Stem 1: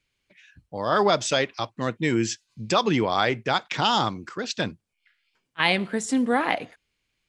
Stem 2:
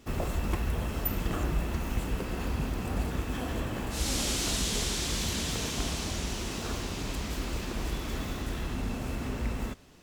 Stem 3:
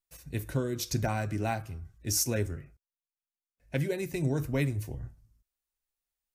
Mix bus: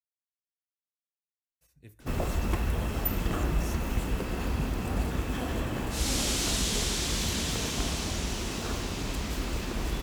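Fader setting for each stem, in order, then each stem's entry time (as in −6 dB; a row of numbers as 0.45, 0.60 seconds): muted, +1.5 dB, −17.5 dB; muted, 2.00 s, 1.50 s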